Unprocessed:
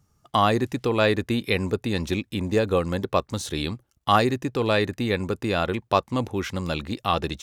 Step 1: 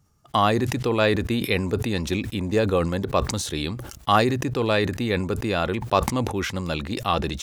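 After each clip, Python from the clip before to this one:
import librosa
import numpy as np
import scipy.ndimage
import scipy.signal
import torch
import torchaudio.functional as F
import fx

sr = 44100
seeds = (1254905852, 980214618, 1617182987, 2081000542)

y = fx.sustainer(x, sr, db_per_s=59.0)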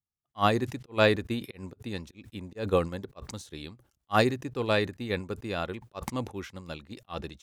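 y = fx.auto_swell(x, sr, attack_ms=125.0)
y = fx.upward_expand(y, sr, threshold_db=-40.0, expansion=2.5)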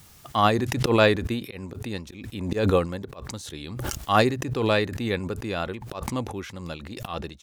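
y = fx.wow_flutter(x, sr, seeds[0], rate_hz=2.1, depth_cents=26.0)
y = fx.pre_swell(y, sr, db_per_s=40.0)
y = y * 10.0 ** (3.0 / 20.0)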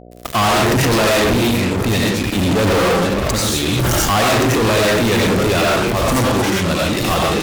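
y = fx.rev_freeverb(x, sr, rt60_s=0.5, hf_ratio=0.55, predelay_ms=50, drr_db=-3.5)
y = fx.fuzz(y, sr, gain_db=37.0, gate_db=-39.0)
y = fx.dmg_buzz(y, sr, base_hz=60.0, harmonics=12, level_db=-40.0, tilt_db=-1, odd_only=False)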